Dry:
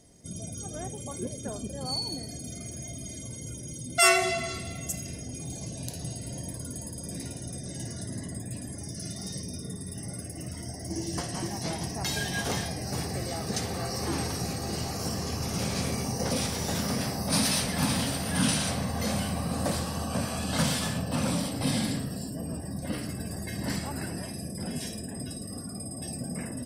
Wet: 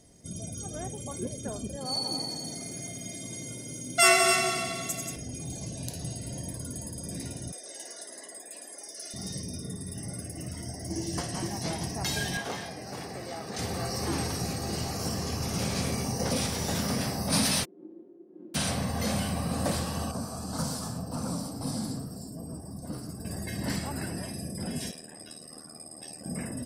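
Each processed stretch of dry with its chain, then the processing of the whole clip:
0:01.76–0:05.16: high-pass filter 170 Hz + echo machine with several playback heads 90 ms, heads all three, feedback 44%, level −8.5 dB
0:07.52–0:09.14: high-pass filter 440 Hz 24 dB per octave + saturating transformer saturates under 700 Hz
0:12.37–0:13.59: high-pass filter 360 Hz 6 dB per octave + high-shelf EQ 4,400 Hz −10 dB + saturating transformer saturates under 690 Hz
0:17.63–0:18.54: spectral envelope flattened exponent 0.3 + flat-topped band-pass 340 Hz, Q 4.5 + comb filter 5.6 ms, depth 74%
0:20.11–0:23.25: flat-topped bell 2,500 Hz −15.5 dB 1.3 octaves + notch filter 560 Hz + flanger 1.9 Hz, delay 1.1 ms, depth 7.8 ms, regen +72%
0:24.91–0:26.26: meter weighting curve A + ring modulation 39 Hz
whole clip: no processing

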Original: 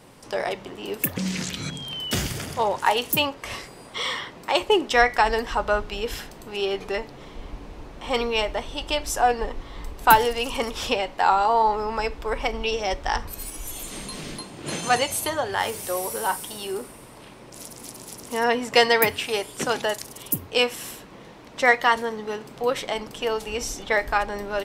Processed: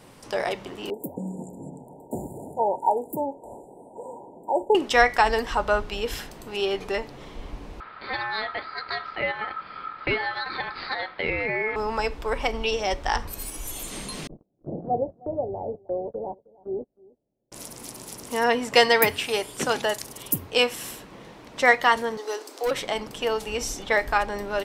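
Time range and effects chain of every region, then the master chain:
0:00.90–0:04.75: linear-phase brick-wall band-stop 980–6,900 Hz + three-way crossover with the lows and the highs turned down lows −15 dB, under 200 Hz, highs −16 dB, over 2,800 Hz
0:07.80–0:11.76: Butterworth low-pass 3,500 Hz 72 dB per octave + downward compressor 2 to 1, threshold −23 dBFS + ring modulation 1,300 Hz
0:14.27–0:17.52: Butterworth low-pass 720 Hz 48 dB per octave + noise gate −36 dBFS, range −33 dB + single-tap delay 312 ms −23 dB
0:22.17–0:22.71: Butterworth high-pass 280 Hz 72 dB per octave + high shelf with overshoot 3,800 Hz +7 dB, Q 1.5 + hard clipping −20.5 dBFS
whole clip: no processing

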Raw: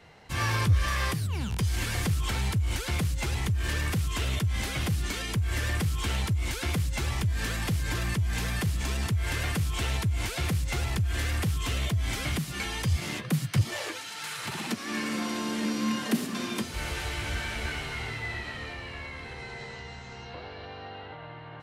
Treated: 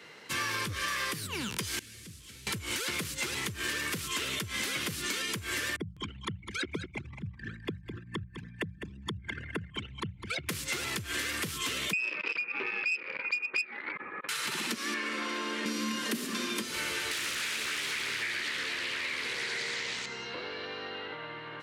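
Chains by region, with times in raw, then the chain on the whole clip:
0:01.79–0:02.47: linear delta modulator 64 kbit/s, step −30 dBFS + guitar amp tone stack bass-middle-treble 10-0-1 + mains-hum notches 50/100/150/200/250/300/350/400 Hz
0:05.76–0:10.49: spectral envelope exaggerated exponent 3 + mains-hum notches 60/120/180 Hz + single-tap delay 206 ms −10.5 dB
0:11.93–0:14.29: voice inversion scrambler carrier 2,600 Hz + saturating transformer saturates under 2,500 Hz
0:14.94–0:15.66: low-pass filter 11,000 Hz + bass and treble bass −14 dB, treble −11 dB
0:17.11–0:20.06: high-shelf EQ 2,900 Hz +12 dB + downward compressor 2.5 to 1, threshold −33 dBFS + highs frequency-modulated by the lows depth 0.85 ms
whole clip: high-pass filter 310 Hz 12 dB per octave; parametric band 740 Hz −13.5 dB 0.62 octaves; downward compressor 4 to 1, threshold −38 dBFS; level +7 dB

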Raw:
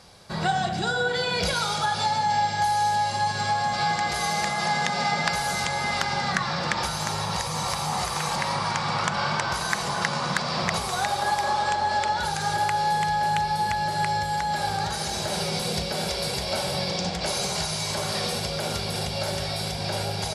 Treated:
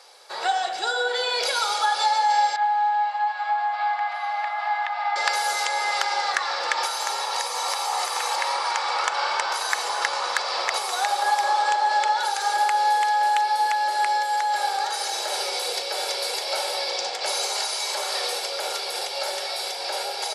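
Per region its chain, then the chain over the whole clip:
0:02.56–0:05.16: Butterworth high-pass 630 Hz 96 dB per octave + high-frequency loss of the air 460 metres
whole clip: high-pass filter 490 Hz 24 dB per octave; comb filter 2.3 ms, depth 31%; level +1.5 dB

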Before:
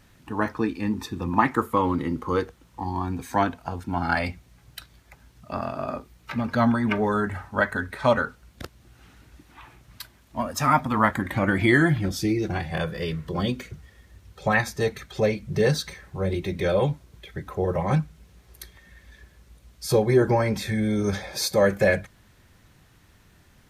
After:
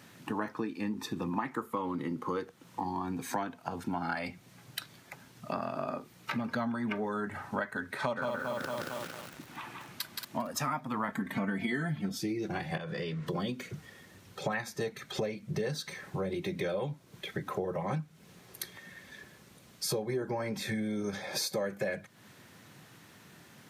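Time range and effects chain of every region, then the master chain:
0:07.99–0:10.50: single-tap delay 172 ms −4 dB + feedback echo at a low word length 227 ms, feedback 55%, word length 7 bits, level −6.5 dB
0:11.08–0:12.18: low-shelf EQ 190 Hz +7.5 dB + comb filter 4.5 ms, depth 81%
0:12.77–0:13.27: low-pass filter 6,700 Hz + downward compressor 12 to 1, threshold −32 dBFS
whole clip: high-pass filter 130 Hz 24 dB per octave; downward compressor 6 to 1, threshold −36 dBFS; level +4 dB

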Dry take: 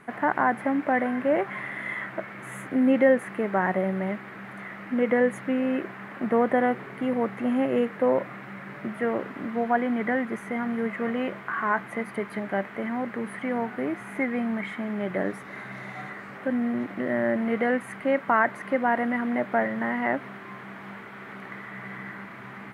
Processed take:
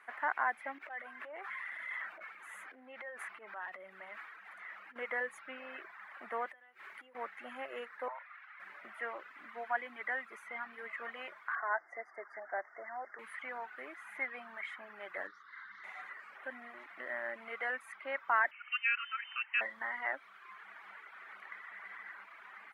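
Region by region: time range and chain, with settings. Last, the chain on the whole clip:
0:00.78–0:04.96: downward compressor 10 to 1, threshold −26 dBFS + transient designer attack −9 dB, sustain +4 dB
0:06.48–0:07.15: downward compressor 12 to 1, threshold −36 dBFS + high-shelf EQ 3,400 Hz +6 dB
0:08.08–0:08.60: high-pass filter 740 Hz 24 dB per octave + high-frequency loss of the air 160 metres
0:11.55–0:13.19: linear-phase brick-wall band-stop 2,200–4,700 Hz + loudspeaker in its box 330–6,100 Hz, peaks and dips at 360 Hz +5 dB, 680 Hz +9 dB, 1,100 Hz −4 dB, 2,200 Hz −7 dB, 4,400 Hz −5 dB
0:15.27–0:15.84: low-pass filter 6,600 Hz 24 dB per octave + phaser with its sweep stopped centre 2,500 Hz, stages 6
0:18.51–0:19.61: high-pass filter 580 Hz + voice inversion scrambler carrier 3,300 Hz + high-frequency loss of the air 67 metres
whole clip: reverb reduction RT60 1.1 s; high-pass filter 1,300 Hz 12 dB per octave; high-shelf EQ 2,800 Hz −10.5 dB; level −1 dB

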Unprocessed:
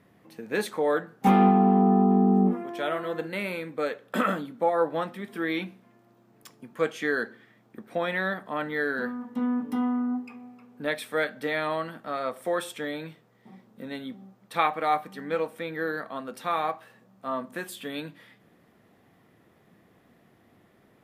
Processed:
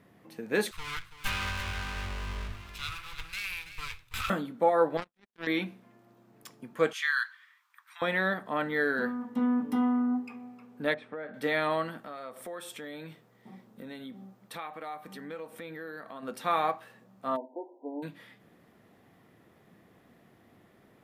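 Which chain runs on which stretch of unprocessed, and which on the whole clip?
0:00.71–0:04.30: lower of the sound and its delayed copy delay 0.8 ms + drawn EQ curve 110 Hz 0 dB, 200 Hz −28 dB, 720 Hz −20 dB, 2,600 Hz +3 dB + single-tap delay 331 ms −12 dB
0:04.97–0:05.47: low-pass filter 11,000 Hz + power curve on the samples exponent 3
0:06.93–0:08.02: Butterworth high-pass 980 Hz 72 dB per octave + dynamic equaliser 3,600 Hz, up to +6 dB, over −46 dBFS, Q 1
0:10.94–0:11.34: Bessel low-pass filter 1,100 Hz + downward compressor 12 to 1, threshold −34 dBFS
0:11.98–0:16.23: downward compressor 3 to 1, threshold −41 dBFS + high-shelf EQ 8,600 Hz +3.5 dB
0:17.35–0:18.02: spectral envelope flattened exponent 0.6 + linear-phase brick-wall band-pass 260–1,000 Hz
whole clip: no processing

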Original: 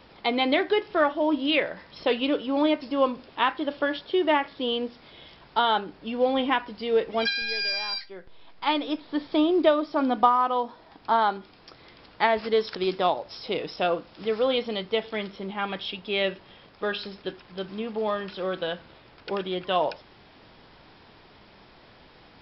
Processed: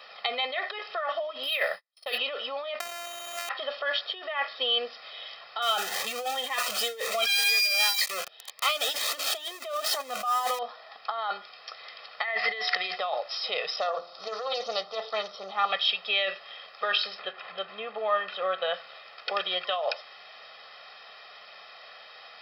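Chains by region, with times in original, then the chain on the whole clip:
0:01.43–0:02.18: noise gate −41 dBFS, range −51 dB + parametric band 5,100 Hz +9.5 dB 0.9 octaves + linearly interpolated sample-rate reduction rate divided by 3×
0:02.80–0:03.49: samples sorted by size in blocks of 128 samples + flutter between parallel walls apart 11.4 metres, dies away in 0.84 s + envelope flattener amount 100%
0:05.62–0:10.59: converter with a step at zero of −27.5 dBFS + phaser whose notches keep moving one way rising 2 Hz
0:12.24–0:12.95: parametric band 2,000 Hz +14 dB 0.31 octaves + steady tone 730 Hz −41 dBFS
0:13.80–0:15.72: flat-topped bell 2,200 Hz −10 dB 1.2 octaves + hum removal 87.19 Hz, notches 10 + highs frequency-modulated by the lows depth 0.19 ms
0:17.19–0:18.74: upward compression, threshold −33 dBFS + high-frequency loss of the air 290 metres
whole clip: compressor whose output falls as the input rises −28 dBFS, ratio −1; high-pass filter 880 Hz 12 dB per octave; comb filter 1.6 ms, depth 95%; level +1.5 dB

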